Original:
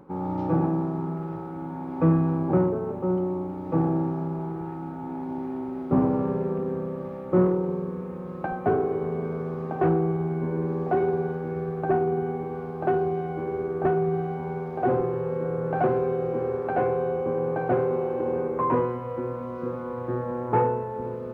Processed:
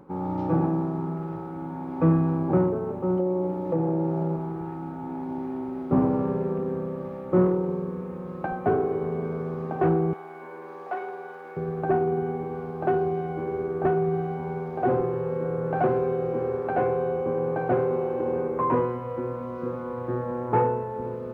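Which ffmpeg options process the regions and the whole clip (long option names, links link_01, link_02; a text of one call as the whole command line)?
ffmpeg -i in.wav -filter_complex "[0:a]asettb=1/sr,asplit=3[link_01][link_02][link_03];[link_01]atrim=end=3.194[link_04];[link_02]atrim=start=3.19:end=4.36,asetpts=PTS-STARTPTS,afade=type=in:duration=0.004:curve=qsin,afade=type=out:start_time=1.166:duration=0.004:curve=qsin,equalizer=frequency=530:width=2.1:gain=9.5,aecho=1:1:5.7:0.52,atrim=end_sample=51597,acompressor=threshold=-21dB:ratio=5:attack=3.2:release=140:knee=1:detection=peak[link_05];[link_03]atrim=start=4.356[link_06];[link_04][link_05]acrossfade=duration=0.004:curve1=hsin:curve2=qsin[link_07];[link_07][link_06]acrossfade=duration=0.004:curve1=qsin:curve2=hsin,asettb=1/sr,asplit=3[link_08][link_09][link_10];[link_08]atrim=end=10.134[link_11];[link_09]atrim=start=10.13:end=11.57,asetpts=PTS-STARTPTS,afade=type=in:duration=0.004:curve=qsin,afade=type=out:start_time=1.436:duration=0.004:curve=qsin,highpass=820,acompressor=mode=upward:threshold=-36dB:ratio=2.5:attack=3.2:release=140:knee=2.83:detection=peak[link_12];[link_10]atrim=start=11.566[link_13];[link_11][link_12]acrossfade=duration=0.004:curve1=hsin:curve2=qsin[link_14];[link_14][link_13]acrossfade=duration=0.004:curve1=qsin:curve2=hsin" out.wav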